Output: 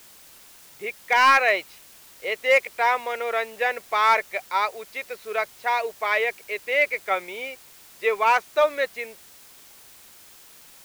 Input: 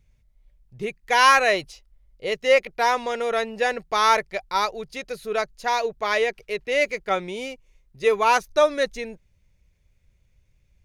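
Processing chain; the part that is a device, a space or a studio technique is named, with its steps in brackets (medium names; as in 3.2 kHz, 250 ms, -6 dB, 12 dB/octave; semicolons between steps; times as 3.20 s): drive-through speaker (band-pass 510–3100 Hz; peaking EQ 2.2 kHz +6.5 dB 0.28 oct; hard clipper -10 dBFS, distortion -20 dB; white noise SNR 24 dB)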